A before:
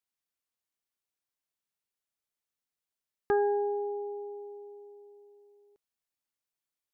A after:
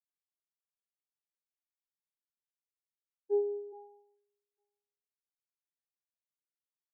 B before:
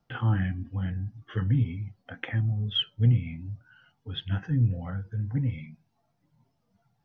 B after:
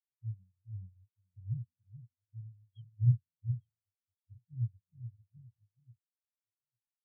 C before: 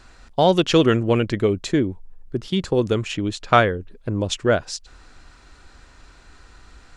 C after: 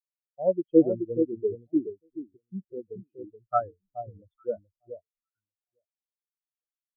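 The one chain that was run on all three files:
echo with dull and thin repeats by turns 0.426 s, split 1100 Hz, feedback 59%, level -2.5 dB; short-mantissa float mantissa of 2-bit; spectral expander 4:1; gain -4.5 dB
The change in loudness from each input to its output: -2.5, -8.5, -7.0 LU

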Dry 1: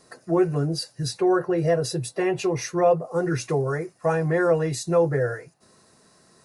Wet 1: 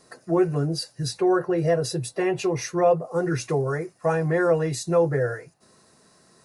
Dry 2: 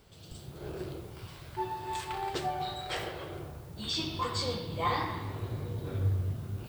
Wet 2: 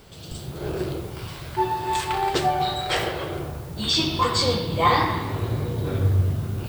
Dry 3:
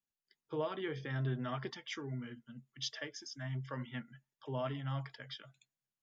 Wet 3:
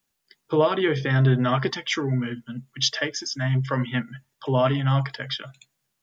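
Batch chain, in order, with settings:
notches 50/100 Hz; match loudness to -24 LUFS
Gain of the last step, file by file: 0.0, +11.5, +17.0 dB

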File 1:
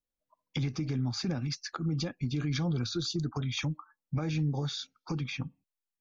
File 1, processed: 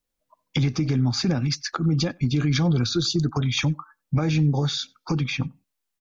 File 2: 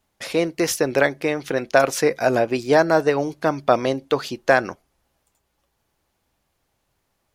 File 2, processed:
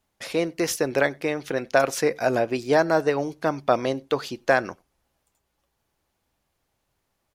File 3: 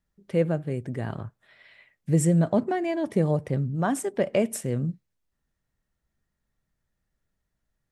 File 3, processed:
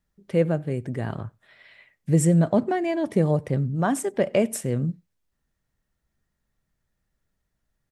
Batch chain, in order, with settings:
outdoor echo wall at 16 m, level -29 dB; match loudness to -24 LUFS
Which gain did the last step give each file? +9.5, -3.5, +2.0 dB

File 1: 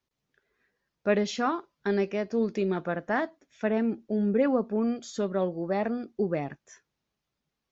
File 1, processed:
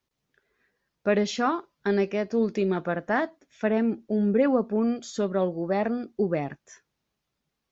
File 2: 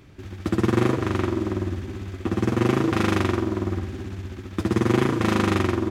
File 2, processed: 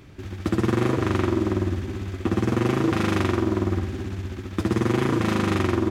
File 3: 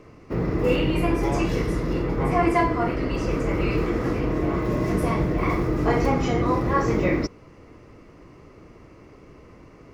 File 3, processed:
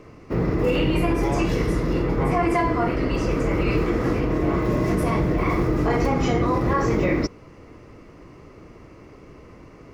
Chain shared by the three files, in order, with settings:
limiter -14.5 dBFS; normalise peaks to -12 dBFS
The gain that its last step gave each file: +2.5, +2.5, +2.5 dB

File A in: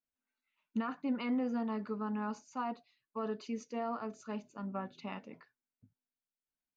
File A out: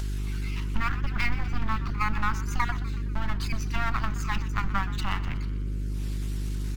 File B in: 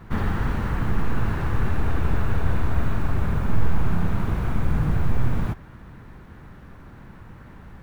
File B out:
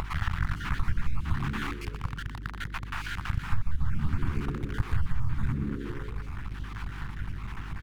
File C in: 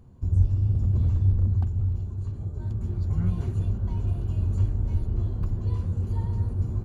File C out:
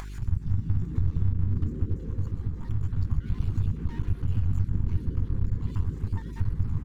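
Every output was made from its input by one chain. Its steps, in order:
random spectral dropouts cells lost 34%; half-wave rectifier; upward compressor, threshold -29 dBFS; Chebyshev band-stop 120–1200 Hz, order 2; buzz 50 Hz, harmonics 8, -45 dBFS -9 dB/oct; frequency-shifting echo 0.123 s, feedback 59%, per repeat +70 Hz, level -15.5 dB; vibrato 5.3 Hz 27 cents; compressor 8:1, threshold -26 dBFS; decimation joined by straight lines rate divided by 2×; normalise peaks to -12 dBFS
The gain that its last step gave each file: +15.5, +5.5, +7.5 dB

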